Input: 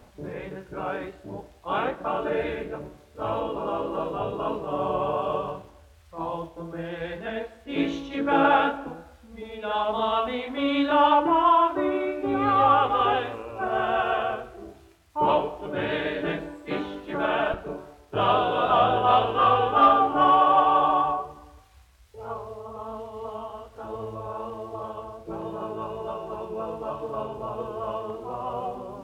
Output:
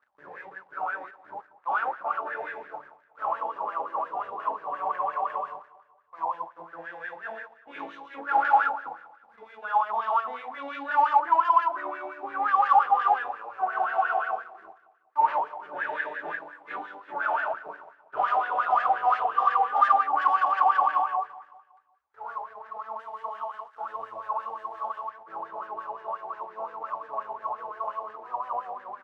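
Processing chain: 22.99–25.1 high shelf 2100 Hz +12 dB; sample leveller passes 3; wah 5.7 Hz 780–1700 Hz, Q 9.4; feedback echo 0.186 s, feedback 46%, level -19.5 dB

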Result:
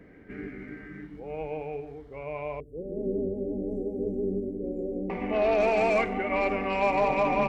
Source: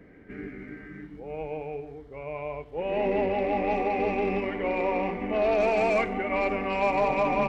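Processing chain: 2.6–5.1 inverse Chebyshev band-stop 950–4300 Hz, stop band 50 dB

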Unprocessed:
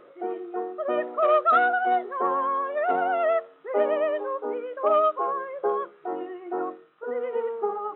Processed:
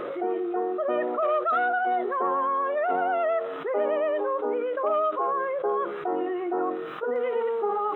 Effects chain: high shelf 3000 Hz -3 dB, from 7.16 s +11 dB; fast leveller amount 70%; gain -5.5 dB

